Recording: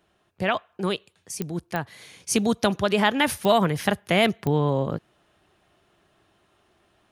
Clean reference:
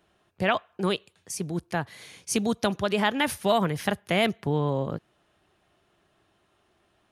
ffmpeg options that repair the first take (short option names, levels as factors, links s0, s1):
-af "adeclick=t=4,asetnsamples=n=441:p=0,asendcmd='2.2 volume volume -3.5dB',volume=1"